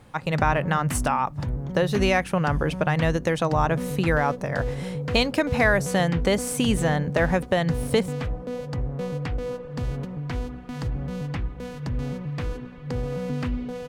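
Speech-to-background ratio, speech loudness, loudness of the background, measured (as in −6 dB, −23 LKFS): 7.0 dB, −24.0 LKFS, −31.0 LKFS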